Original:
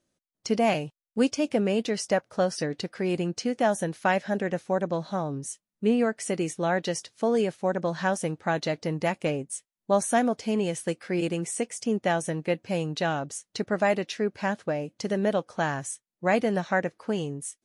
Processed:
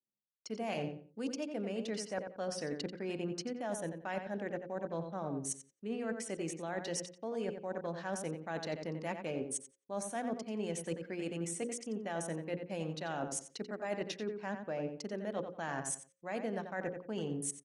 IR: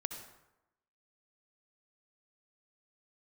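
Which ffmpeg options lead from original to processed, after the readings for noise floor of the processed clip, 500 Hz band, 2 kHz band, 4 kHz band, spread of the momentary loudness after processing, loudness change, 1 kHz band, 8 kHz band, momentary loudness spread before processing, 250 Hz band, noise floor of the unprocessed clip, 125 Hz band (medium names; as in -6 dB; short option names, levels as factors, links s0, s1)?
-71 dBFS, -12.0 dB, -13.0 dB, -10.5 dB, 3 LU, -11.5 dB, -13.0 dB, -6.0 dB, 7 LU, -12.0 dB, under -85 dBFS, -11.5 dB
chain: -filter_complex "[0:a]highpass=f=160:w=0.5412,highpass=f=160:w=1.3066,anlmdn=0.631,bandreject=f=60:t=h:w=6,bandreject=f=120:t=h:w=6,bandreject=f=180:t=h:w=6,bandreject=f=240:t=h:w=6,bandreject=f=300:t=h:w=6,bandreject=f=360:t=h:w=6,bandreject=f=420:t=h:w=6,bandreject=f=480:t=h:w=6,bandreject=f=540:t=h:w=6,areverse,acompressor=threshold=0.0126:ratio=16,areverse,asplit=2[s0][s1];[s1]adelay=89,lowpass=f=3100:p=1,volume=0.447,asplit=2[s2][s3];[s3]adelay=89,lowpass=f=3100:p=1,volume=0.27,asplit=2[s4][s5];[s5]adelay=89,lowpass=f=3100:p=1,volume=0.27[s6];[s0][s2][s4][s6]amix=inputs=4:normalize=0,volume=1.41"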